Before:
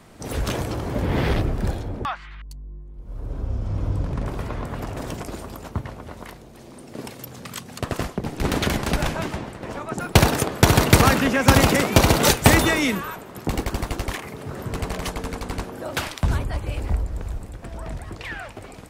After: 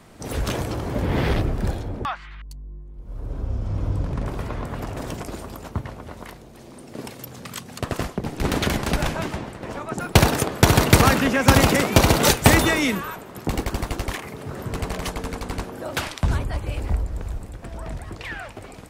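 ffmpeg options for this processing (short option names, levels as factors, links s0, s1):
-filter_complex "[0:a]asettb=1/sr,asplit=3[s0][s1][s2];[s0]atrim=end=16.004[s3];[s1]atrim=start=16:end=16.42,asetpts=PTS-STARTPTS,afade=t=in:d=0.004:c=qsin,afade=t=out:st=0.416:d=0.004:c=qsin,lowpass=12000[s4];[s2]atrim=start=16.416[s5];[s3][s4]acrossfade=d=0.004:c1=hsin:c2=qsin[s6];[s6][s5]acrossfade=d=0.004:c1=qsin:c2=hsin"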